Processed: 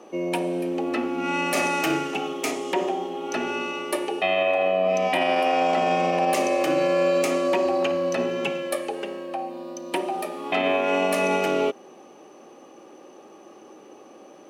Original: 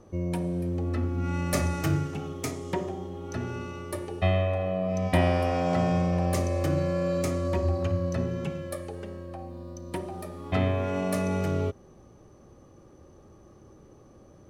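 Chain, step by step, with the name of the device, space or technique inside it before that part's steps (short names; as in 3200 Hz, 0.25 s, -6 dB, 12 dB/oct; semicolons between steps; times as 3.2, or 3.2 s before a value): laptop speaker (HPF 260 Hz 24 dB/oct; bell 790 Hz +6 dB 0.42 oct; bell 2700 Hz +10.5 dB 0.55 oct; limiter -21 dBFS, peak gain reduction 10.5 dB); gain +8 dB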